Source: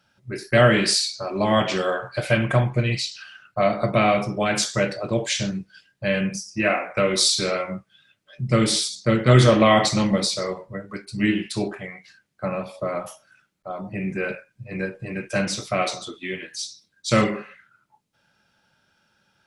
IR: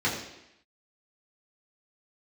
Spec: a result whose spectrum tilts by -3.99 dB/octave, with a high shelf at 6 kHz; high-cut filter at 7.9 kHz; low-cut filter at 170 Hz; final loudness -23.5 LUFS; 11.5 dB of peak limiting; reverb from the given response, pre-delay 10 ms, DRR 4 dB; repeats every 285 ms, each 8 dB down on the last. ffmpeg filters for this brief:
-filter_complex "[0:a]highpass=170,lowpass=7900,highshelf=f=6000:g=4.5,alimiter=limit=0.158:level=0:latency=1,aecho=1:1:285|570|855|1140|1425:0.398|0.159|0.0637|0.0255|0.0102,asplit=2[s0][s1];[1:a]atrim=start_sample=2205,adelay=10[s2];[s1][s2]afir=irnorm=-1:irlink=0,volume=0.158[s3];[s0][s3]amix=inputs=2:normalize=0,volume=1.19"

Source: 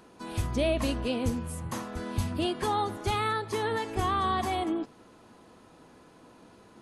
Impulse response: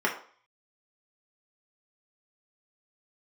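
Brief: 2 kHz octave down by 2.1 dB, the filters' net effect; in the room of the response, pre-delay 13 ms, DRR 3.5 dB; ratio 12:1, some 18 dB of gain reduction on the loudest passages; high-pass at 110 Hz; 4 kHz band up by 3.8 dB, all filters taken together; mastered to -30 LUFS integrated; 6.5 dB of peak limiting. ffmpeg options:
-filter_complex "[0:a]highpass=110,equalizer=f=2000:t=o:g=-4.5,equalizer=f=4000:t=o:g=6.5,acompressor=threshold=0.00708:ratio=12,alimiter=level_in=5.96:limit=0.0631:level=0:latency=1,volume=0.168,asplit=2[s0][s1];[1:a]atrim=start_sample=2205,adelay=13[s2];[s1][s2]afir=irnorm=-1:irlink=0,volume=0.158[s3];[s0][s3]amix=inputs=2:normalize=0,volume=7.94"

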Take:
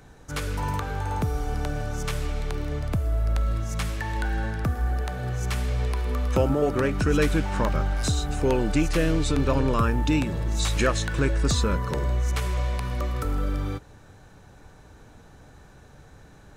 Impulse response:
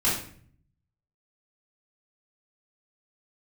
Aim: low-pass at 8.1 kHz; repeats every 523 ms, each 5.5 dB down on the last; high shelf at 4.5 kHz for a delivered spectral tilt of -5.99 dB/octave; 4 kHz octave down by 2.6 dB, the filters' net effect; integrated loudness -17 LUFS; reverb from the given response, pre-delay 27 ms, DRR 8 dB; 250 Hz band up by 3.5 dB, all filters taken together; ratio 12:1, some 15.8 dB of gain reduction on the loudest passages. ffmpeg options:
-filter_complex "[0:a]lowpass=8100,equalizer=f=250:t=o:g=4.5,equalizer=f=4000:t=o:g=-6,highshelf=f=4500:g=6,acompressor=threshold=0.0251:ratio=12,aecho=1:1:523|1046|1569|2092|2615|3138|3661:0.531|0.281|0.149|0.079|0.0419|0.0222|0.0118,asplit=2[s0][s1];[1:a]atrim=start_sample=2205,adelay=27[s2];[s1][s2]afir=irnorm=-1:irlink=0,volume=0.0944[s3];[s0][s3]amix=inputs=2:normalize=0,volume=8.41"

